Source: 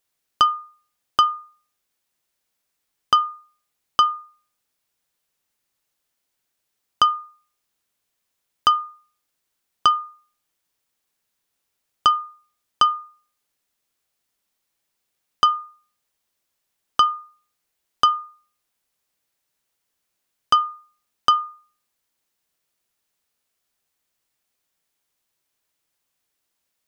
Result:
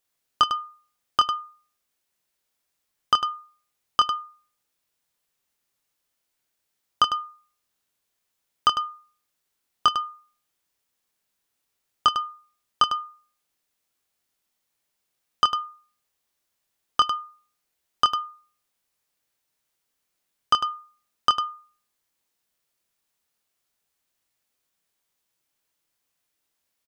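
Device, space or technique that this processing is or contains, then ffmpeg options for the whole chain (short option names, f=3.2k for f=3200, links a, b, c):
slapback doubling: -filter_complex "[0:a]asplit=3[a][b][c];[b]adelay=25,volume=-6dB[d];[c]adelay=101,volume=-9dB[e];[a][d][e]amix=inputs=3:normalize=0,volume=-2.5dB"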